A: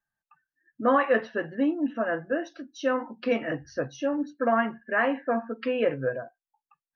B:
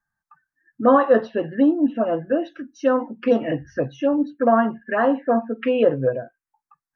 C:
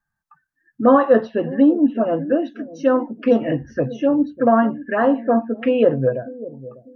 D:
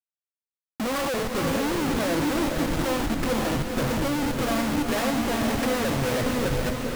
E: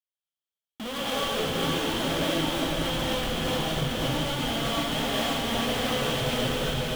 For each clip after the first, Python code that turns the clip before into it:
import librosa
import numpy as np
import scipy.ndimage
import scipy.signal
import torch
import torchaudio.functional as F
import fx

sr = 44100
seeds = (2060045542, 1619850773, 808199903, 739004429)

y1 = fx.lowpass(x, sr, hz=3800.0, slope=6)
y1 = fx.env_phaser(y1, sr, low_hz=500.0, high_hz=2300.0, full_db=-21.5)
y1 = y1 * 10.0 ** (8.5 / 20.0)
y2 = fx.low_shelf(y1, sr, hz=390.0, db=5.0)
y2 = fx.echo_bbd(y2, sr, ms=597, stages=2048, feedback_pct=31, wet_db=-16.0)
y3 = fx.schmitt(y2, sr, flips_db=-32.5)
y3 = fx.echo_diffused(y3, sr, ms=474, feedback_pct=43, wet_db=-3)
y3 = y3 * 10.0 ** (-7.5 / 20.0)
y4 = fx.peak_eq(y3, sr, hz=3200.0, db=14.0, octaves=0.34)
y4 = fx.rev_gated(y4, sr, seeds[0], gate_ms=280, shape='rising', drr_db=-5.5)
y4 = y4 * 10.0 ** (-9.0 / 20.0)